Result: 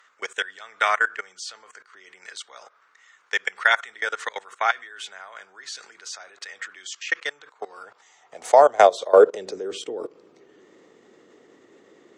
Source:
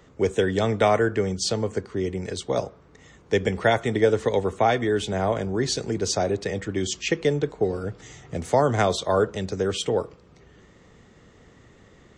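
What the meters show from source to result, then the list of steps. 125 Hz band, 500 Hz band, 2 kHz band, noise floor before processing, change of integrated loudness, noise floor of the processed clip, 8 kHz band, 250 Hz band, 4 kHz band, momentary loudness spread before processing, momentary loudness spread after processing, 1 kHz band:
under -30 dB, 0.0 dB, +6.0 dB, -54 dBFS, +2.5 dB, -60 dBFS, -5.5 dB, -15.5 dB, -2.5 dB, 8 LU, 23 LU, +3.5 dB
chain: level held to a coarse grid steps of 20 dB; high-pass sweep 1.4 kHz -> 340 Hz, 7.24–9.84 s; Chebyshev shaper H 5 -40 dB, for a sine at -5.5 dBFS; trim +4.5 dB

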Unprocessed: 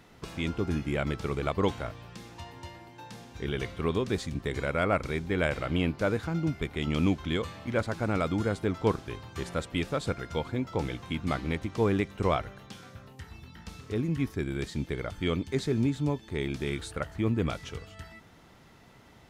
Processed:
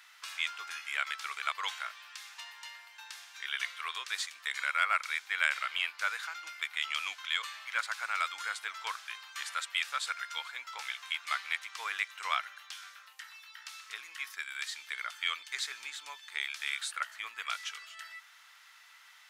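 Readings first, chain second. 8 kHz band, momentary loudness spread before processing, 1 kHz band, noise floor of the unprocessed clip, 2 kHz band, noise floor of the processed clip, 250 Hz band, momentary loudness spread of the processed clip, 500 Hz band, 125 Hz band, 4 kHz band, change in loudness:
+5.0 dB, 18 LU, -1.0 dB, -55 dBFS, +4.5 dB, -58 dBFS, under -40 dB, 14 LU, -26.5 dB, under -40 dB, +5.0 dB, -4.5 dB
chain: high-pass 1.3 kHz 24 dB/octave; trim +5 dB

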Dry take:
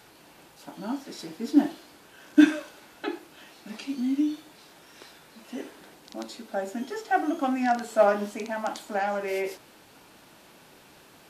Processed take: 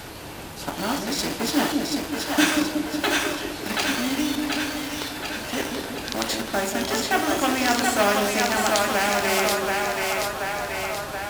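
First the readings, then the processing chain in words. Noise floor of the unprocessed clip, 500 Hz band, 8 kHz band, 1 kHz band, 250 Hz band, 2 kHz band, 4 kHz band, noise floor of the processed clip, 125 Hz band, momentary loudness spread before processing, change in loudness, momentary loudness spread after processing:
-54 dBFS, +4.0 dB, +19.0 dB, +6.0 dB, +1.0 dB, +11.5 dB, +17.5 dB, -36 dBFS, no reading, 19 LU, +3.5 dB, 9 LU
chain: in parallel at -10 dB: bit crusher 6-bit; on the sum: two-band feedback delay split 510 Hz, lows 185 ms, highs 729 ms, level -4 dB; added noise brown -50 dBFS; high-pass 70 Hz 12 dB/octave; spectrum-flattening compressor 2:1

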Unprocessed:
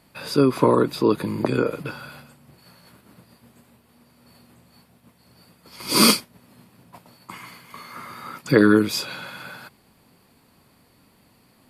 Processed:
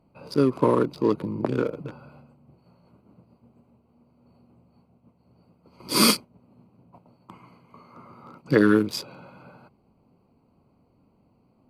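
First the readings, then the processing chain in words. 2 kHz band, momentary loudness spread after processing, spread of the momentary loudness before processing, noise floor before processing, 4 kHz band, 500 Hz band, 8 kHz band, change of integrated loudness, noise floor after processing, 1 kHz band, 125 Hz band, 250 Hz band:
-4.5 dB, 12 LU, 22 LU, -59 dBFS, -4.0 dB, -3.0 dB, -4.0 dB, -3.0 dB, -64 dBFS, -4.0 dB, -3.0 dB, -3.0 dB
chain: local Wiener filter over 25 samples; trim -3 dB

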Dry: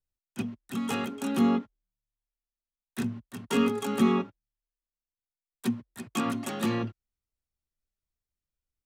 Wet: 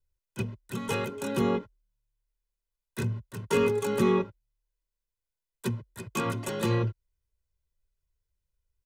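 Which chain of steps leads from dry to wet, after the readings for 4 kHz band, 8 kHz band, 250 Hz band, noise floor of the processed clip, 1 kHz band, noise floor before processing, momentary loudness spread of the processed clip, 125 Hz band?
-1.0 dB, +0.5 dB, -4.0 dB, under -85 dBFS, -0.5 dB, under -85 dBFS, 12 LU, +6.5 dB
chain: bass shelf 320 Hz +8.5 dB; comb 2 ms, depth 79%; trim -1.5 dB

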